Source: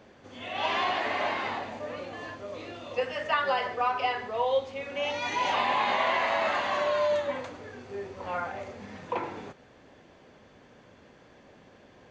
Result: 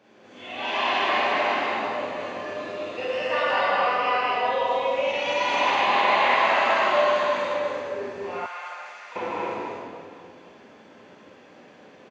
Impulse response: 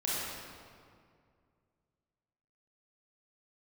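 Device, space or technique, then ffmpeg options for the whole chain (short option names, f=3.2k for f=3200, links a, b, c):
stadium PA: -filter_complex "[0:a]highpass=180,equalizer=f=2.5k:t=o:w=0.31:g=4,aecho=1:1:204.1|253.6:0.794|0.501[a];[1:a]atrim=start_sample=2205[b];[a][b]afir=irnorm=-1:irlink=0,asettb=1/sr,asplit=3[c][d][e];[c]atrim=end=8.464[f];[d]atrim=start=8.46:end=9.16,asetpts=PTS-STARTPTS,afade=t=in:d=0.004:c=qsin,afade=t=out:st=0.696:d=0.004:c=qsin,highpass=1.4k[g];[e]atrim=start=9.156[h];[f][g]acrossfade=d=0.004:c1=hsin:c2=qsin[i];[i][h]acrossfade=d=0.004:c1=qsin:c2=hsin,volume=-4dB"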